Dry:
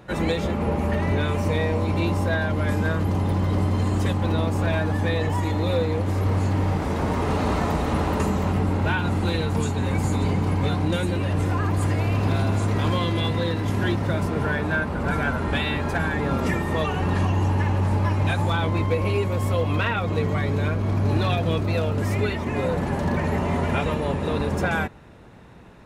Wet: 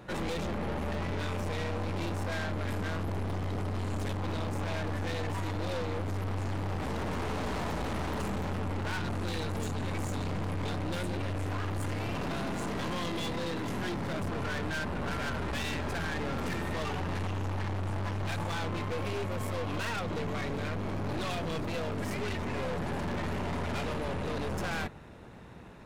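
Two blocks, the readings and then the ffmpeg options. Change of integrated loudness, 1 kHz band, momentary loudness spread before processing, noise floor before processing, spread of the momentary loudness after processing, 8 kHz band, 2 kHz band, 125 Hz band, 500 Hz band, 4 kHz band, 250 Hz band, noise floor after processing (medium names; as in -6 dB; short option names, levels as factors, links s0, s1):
-10.5 dB, -9.0 dB, 2 LU, -27 dBFS, 1 LU, -5.0 dB, -9.0 dB, -12.5 dB, -10.0 dB, -6.5 dB, -10.5 dB, -35 dBFS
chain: -af "bandreject=f=50:t=h:w=6,bandreject=f=100:t=h:w=6,bandreject=f=150:t=h:w=6,aeval=exprs='(tanh(39.8*val(0)+0.5)-tanh(0.5))/39.8':c=same"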